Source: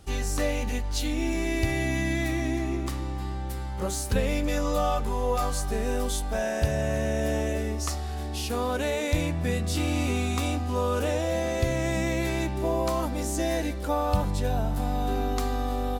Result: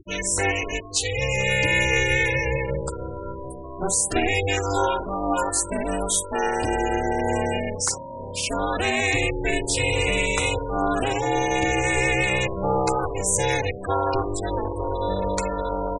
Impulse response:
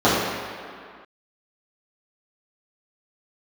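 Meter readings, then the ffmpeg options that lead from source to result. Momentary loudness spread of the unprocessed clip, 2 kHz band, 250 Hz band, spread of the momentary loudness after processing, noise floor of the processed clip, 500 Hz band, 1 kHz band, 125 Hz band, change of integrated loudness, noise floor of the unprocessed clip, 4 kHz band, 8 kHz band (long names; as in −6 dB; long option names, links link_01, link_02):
4 LU, +11.0 dB, 0.0 dB, 7 LU, −35 dBFS, +4.0 dB, +6.5 dB, −0.5 dB, +5.0 dB, −32 dBFS, +7.5 dB, +10.5 dB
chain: -af "acompressor=mode=upward:threshold=-35dB:ratio=2.5,equalizer=frequency=8400:width_type=o:width=1:gain=10.5,aecho=1:1:11|61:0.237|0.251,afftfilt=real='re*gte(hypot(re,im),0.0398)':imag='im*gte(hypot(re,im),0.0398)':win_size=1024:overlap=0.75,highpass=frequency=120:width=0.5412,highpass=frequency=120:width=1.3066,equalizer=frequency=2300:width_type=o:width=0.56:gain=12,aeval=exprs='val(0)*sin(2*PI*200*n/s)':channel_layout=same,afftfilt=real='re*gte(hypot(re,im),0.00794)':imag='im*gte(hypot(re,im),0.00794)':win_size=1024:overlap=0.75,volume=6.5dB"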